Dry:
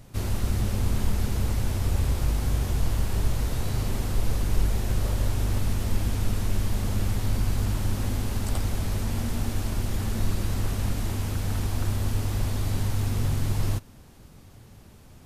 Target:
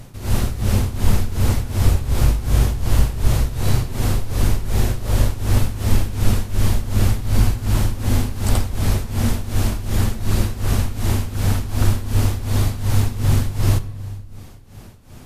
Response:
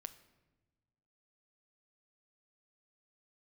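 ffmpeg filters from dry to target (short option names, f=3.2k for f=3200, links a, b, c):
-filter_complex "[0:a]tremolo=f=2.7:d=0.84,asplit=2[a][b];[1:a]atrim=start_sample=2205,asetrate=36162,aresample=44100[c];[b][c]afir=irnorm=-1:irlink=0,volume=15.5dB[d];[a][d]amix=inputs=2:normalize=0,volume=-3dB"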